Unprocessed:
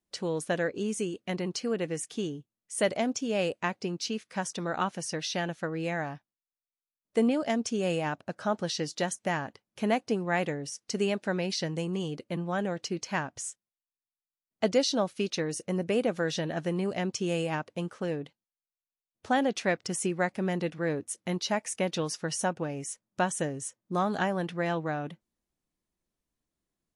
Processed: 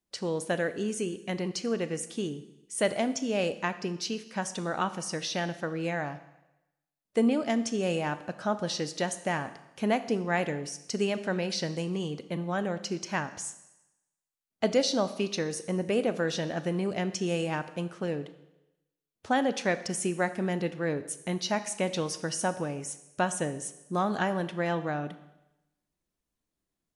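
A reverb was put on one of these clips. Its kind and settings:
four-comb reverb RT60 0.94 s, combs from 27 ms, DRR 12 dB

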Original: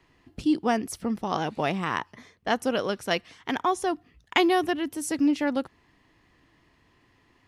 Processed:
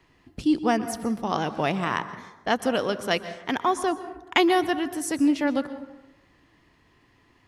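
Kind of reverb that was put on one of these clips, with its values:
dense smooth reverb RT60 1 s, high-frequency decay 0.4×, pre-delay 110 ms, DRR 12.5 dB
level +1.5 dB

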